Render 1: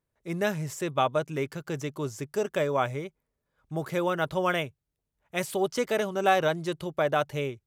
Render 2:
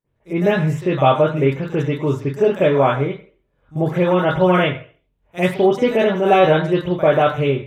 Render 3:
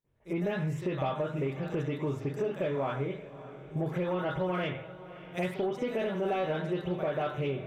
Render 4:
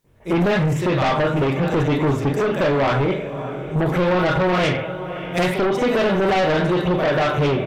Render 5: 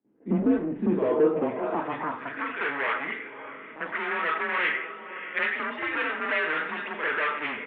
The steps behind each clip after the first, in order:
reverb, pre-delay 44 ms, DRR -15 dB; gain -5.5 dB
compressor 4:1, threshold -25 dBFS, peak gain reduction 14.5 dB; soft clip -16.5 dBFS, distortion -24 dB; diffused feedback echo 0.596 s, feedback 46%, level -15 dB; gain -4.5 dB
in parallel at -8 dB: sine folder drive 10 dB, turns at -21.5 dBFS; on the sum: doubler 41 ms -12 dB; gain +8.5 dB
band-pass sweep 400 Hz -> 2000 Hz, 0.91–2.46; notch 920 Hz, Q 26; mistuned SSB -150 Hz 370–3400 Hz; gain +2.5 dB

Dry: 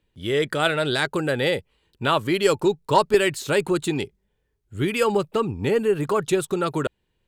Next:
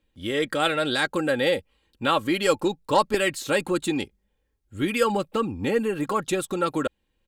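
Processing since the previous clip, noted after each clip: comb 3.7 ms, depth 55%; gain -2 dB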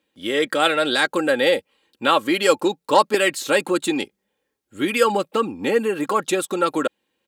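HPF 260 Hz 12 dB/oct; gain +5 dB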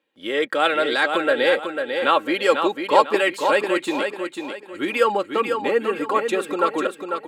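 tone controls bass -11 dB, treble -11 dB; on a send: feedback echo 0.496 s, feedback 34%, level -6 dB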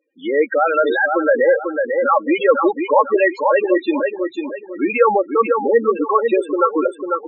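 in parallel at +2 dB: limiter -10.5 dBFS, peak gain reduction 9 dB; on the sum: loudest bins only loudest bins 8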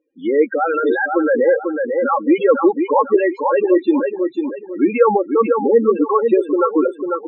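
RIAA curve playback; notch comb 620 Hz; gain -1 dB

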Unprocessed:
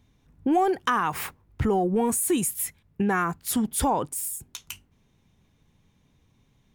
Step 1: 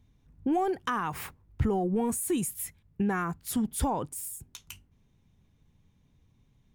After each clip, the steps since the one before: low shelf 200 Hz +8.5 dB; gain -7 dB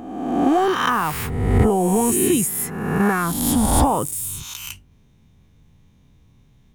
spectral swells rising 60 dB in 1.30 s; gain +8 dB

